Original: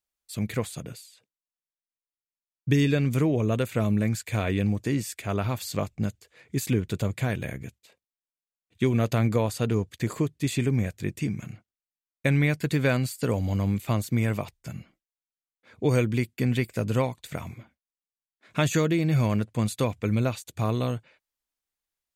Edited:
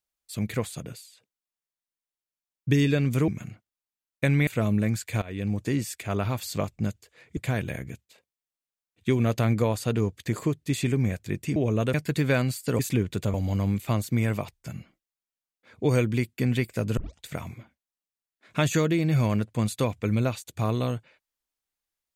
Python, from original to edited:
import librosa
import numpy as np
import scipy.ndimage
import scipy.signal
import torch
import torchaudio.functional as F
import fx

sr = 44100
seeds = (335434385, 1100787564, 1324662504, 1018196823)

y = fx.edit(x, sr, fx.swap(start_s=3.28, length_s=0.38, other_s=11.3, other_length_s=1.19),
    fx.fade_in_from(start_s=4.41, length_s=0.4, floor_db=-19.0),
    fx.move(start_s=6.56, length_s=0.55, to_s=13.34),
    fx.tape_start(start_s=16.97, length_s=0.26), tone=tone)